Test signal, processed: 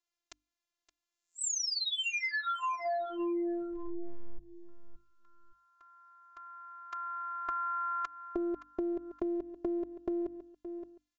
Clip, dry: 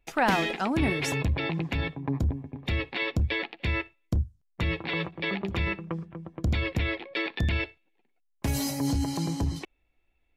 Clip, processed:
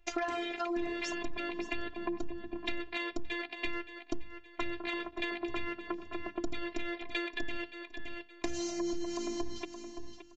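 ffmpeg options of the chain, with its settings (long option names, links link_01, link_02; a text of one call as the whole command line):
ffmpeg -i in.wav -af "afftfilt=real='hypot(re,im)*cos(PI*b)':imag='0':win_size=512:overlap=0.75,aresample=16000,aeval=exprs='0.282*sin(PI/2*1.78*val(0)/0.282)':channel_layout=same,aresample=44100,bandreject=frequency=50:width_type=h:width=6,bandreject=frequency=100:width_type=h:width=6,bandreject=frequency=150:width_type=h:width=6,bandreject=frequency=200:width_type=h:width=6,bandreject=frequency=250:width_type=h:width=6,bandreject=frequency=300:width_type=h:width=6,aecho=1:1:570|1140:0.141|0.0268,acompressor=threshold=-32dB:ratio=6" out.wav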